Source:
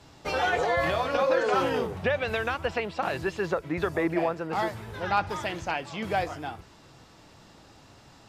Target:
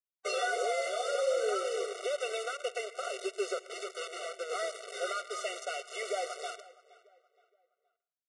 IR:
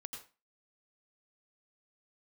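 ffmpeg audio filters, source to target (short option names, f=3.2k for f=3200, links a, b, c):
-filter_complex "[0:a]asettb=1/sr,asplit=3[a][b][c];[a]atrim=end=1.074[d];[b]atrim=start=1.07:end=1.76,asetpts=PTS-STARTPTS,afade=t=in:d=0.004:c=qsin,afade=t=out:st=0.686:d=0.004:c=qsin,lowshelf=f=390:g=7.5[e];[c]atrim=start=1.756[f];[d][e]acrossfade=d=0.004:c1=hsin:c2=qsin[g];[g][f]acrossfade=d=0.004:c1=qsin:c2=hsin,acrossover=split=4200[h][i];[i]acontrast=43[j];[h][j]amix=inputs=2:normalize=0,alimiter=limit=-21dB:level=0:latency=1:release=338,acrusher=bits=5:mix=0:aa=0.000001,asettb=1/sr,asplit=3[k][l][m];[k]atrim=end=3.674[n];[l]atrim=start=3.67:end=4.36,asetpts=PTS-STARTPTS,afade=t=in:d=0.004:c=qsin,afade=t=out:st=0.686:d=0.004:c=qsin,aeval=exprs='(mod(35.5*val(0)+1,2)-1)/35.5':c=same[o];[m]atrim=start=4.356[p];[n][o]acrossfade=d=0.004:c1=hsin:c2=qsin[q];[q][p]acrossfade=d=0.004:c1=qsin:c2=hsin,asplit=2[r][s];[s]adelay=470,lowpass=f=3.1k:p=1,volume=-20dB,asplit=2[t][u];[u]adelay=470,lowpass=f=3.1k:p=1,volume=0.36,asplit=2[v][w];[w]adelay=470,lowpass=f=3.1k:p=1,volume=0.36[x];[r][t][v][x]amix=inputs=4:normalize=0,asplit=2[y][z];[1:a]atrim=start_sample=2205,asetrate=33516,aresample=44100[aa];[z][aa]afir=irnorm=-1:irlink=0,volume=-10dB[ab];[y][ab]amix=inputs=2:normalize=0,aresample=22050,aresample=44100,afftfilt=real='re*eq(mod(floor(b*sr/1024/380),2),1)':imag='im*eq(mod(floor(b*sr/1024/380),2),1)':win_size=1024:overlap=0.75,volume=-1.5dB"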